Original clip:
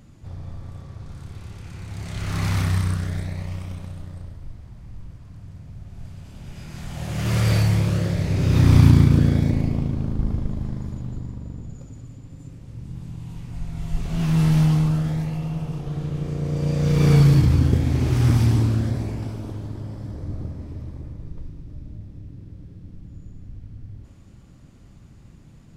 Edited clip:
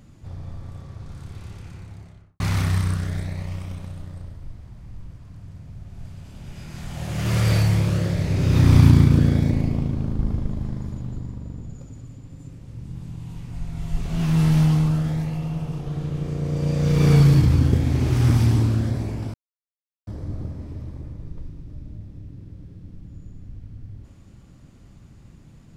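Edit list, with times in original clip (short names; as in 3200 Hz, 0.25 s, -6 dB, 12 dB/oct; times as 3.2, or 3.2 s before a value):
1.46–2.4 studio fade out
19.34–20.07 mute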